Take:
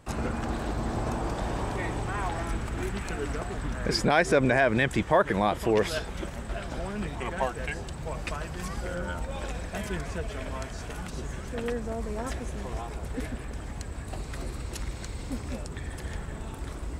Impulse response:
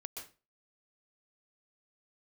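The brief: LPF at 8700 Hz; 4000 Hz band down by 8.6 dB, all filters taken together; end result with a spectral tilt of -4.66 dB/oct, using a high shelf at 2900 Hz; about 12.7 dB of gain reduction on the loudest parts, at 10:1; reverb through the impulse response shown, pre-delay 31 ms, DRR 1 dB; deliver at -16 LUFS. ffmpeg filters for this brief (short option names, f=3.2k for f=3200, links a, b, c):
-filter_complex "[0:a]lowpass=8.7k,highshelf=f=2.9k:g=-5,equalizer=f=4k:t=o:g=-7,acompressor=threshold=-30dB:ratio=10,asplit=2[a][b];[1:a]atrim=start_sample=2205,adelay=31[c];[b][c]afir=irnorm=-1:irlink=0,volume=2dB[d];[a][d]amix=inputs=2:normalize=0,volume=18.5dB"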